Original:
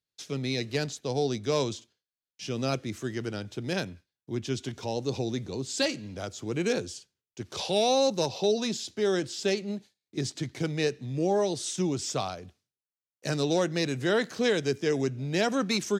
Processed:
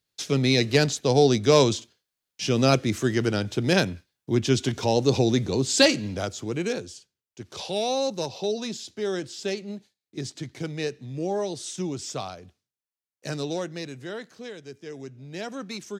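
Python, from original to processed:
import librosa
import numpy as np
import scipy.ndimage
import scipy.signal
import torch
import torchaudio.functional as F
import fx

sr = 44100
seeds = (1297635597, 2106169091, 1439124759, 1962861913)

y = fx.gain(x, sr, db=fx.line((6.06, 9.5), (6.79, -2.0), (13.35, -2.0), (14.57, -14.5), (15.45, -8.0)))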